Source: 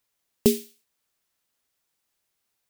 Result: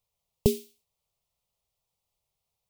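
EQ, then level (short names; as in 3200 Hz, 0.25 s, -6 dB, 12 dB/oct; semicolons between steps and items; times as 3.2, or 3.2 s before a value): tone controls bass +9 dB, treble -7 dB; fixed phaser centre 670 Hz, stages 4; 0.0 dB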